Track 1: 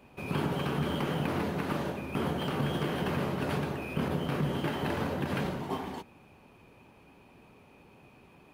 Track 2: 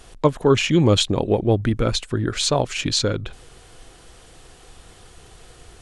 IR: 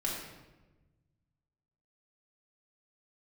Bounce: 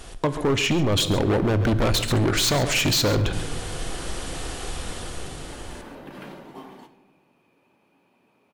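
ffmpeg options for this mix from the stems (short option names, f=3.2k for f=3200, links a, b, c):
-filter_complex "[0:a]highpass=190,adelay=850,volume=-9dB,asplit=2[a][b];[b]volume=-10dB[c];[1:a]alimiter=limit=-12.5dB:level=0:latency=1:release=201,dynaudnorm=f=240:g=9:m=10dB,asoftclip=type=hard:threshold=-18.5dB,volume=3dB,asplit=4[d][e][f][g];[e]volume=-14dB[h];[f]volume=-13dB[i];[g]apad=whole_len=413808[j];[a][j]sidechaincompress=threshold=-38dB:ratio=8:attack=16:release=993[k];[2:a]atrim=start_sample=2205[l];[c][h]amix=inputs=2:normalize=0[m];[m][l]afir=irnorm=-1:irlink=0[n];[i]aecho=0:1:136:1[o];[k][d][n][o]amix=inputs=4:normalize=0,alimiter=limit=-15dB:level=0:latency=1:release=84"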